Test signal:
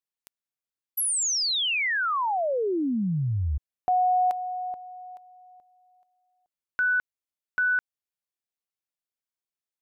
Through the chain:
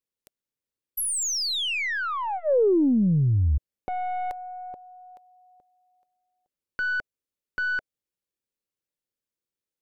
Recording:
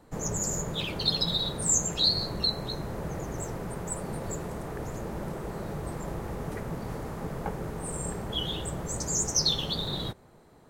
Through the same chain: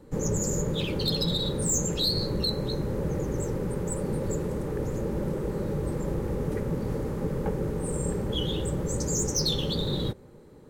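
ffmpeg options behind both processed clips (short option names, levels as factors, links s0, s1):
-af "aeval=exprs='(tanh(8.91*val(0)+0.15)-tanh(0.15))/8.91':c=same,asuperstop=centerf=680:order=4:qfactor=4.8,lowshelf=f=690:t=q:w=1.5:g=6.5,acontrast=30,volume=0.531"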